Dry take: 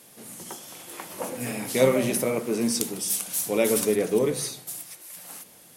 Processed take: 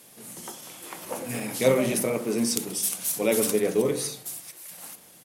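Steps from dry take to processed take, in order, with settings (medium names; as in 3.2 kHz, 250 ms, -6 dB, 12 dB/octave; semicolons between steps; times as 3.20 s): word length cut 12-bit, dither none; tempo 1.1×; de-hum 49.53 Hz, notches 40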